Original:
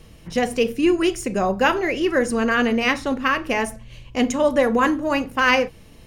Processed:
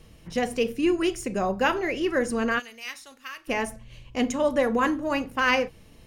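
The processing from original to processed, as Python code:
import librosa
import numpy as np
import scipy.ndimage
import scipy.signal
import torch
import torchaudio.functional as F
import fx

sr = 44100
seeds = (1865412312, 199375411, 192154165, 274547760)

y = fx.pre_emphasis(x, sr, coefficient=0.97, at=(2.58, 3.47), fade=0.02)
y = y * librosa.db_to_amplitude(-5.0)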